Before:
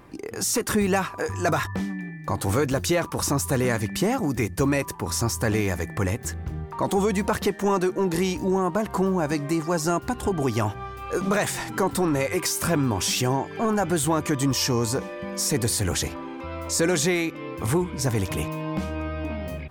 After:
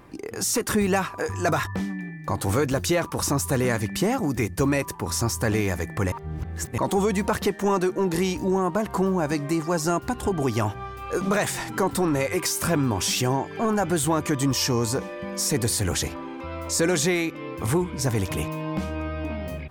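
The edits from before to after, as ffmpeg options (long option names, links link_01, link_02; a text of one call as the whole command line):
ffmpeg -i in.wav -filter_complex "[0:a]asplit=3[link_01][link_02][link_03];[link_01]atrim=end=6.122[link_04];[link_02]atrim=start=6.118:end=6.782,asetpts=PTS-STARTPTS,areverse[link_05];[link_03]atrim=start=6.778[link_06];[link_04][link_05]acrossfade=duration=0.004:curve1=hsin:curve2=hsin[link_07];[link_07][link_06]acrossfade=duration=0.004:curve1=hsin:curve2=hsin" out.wav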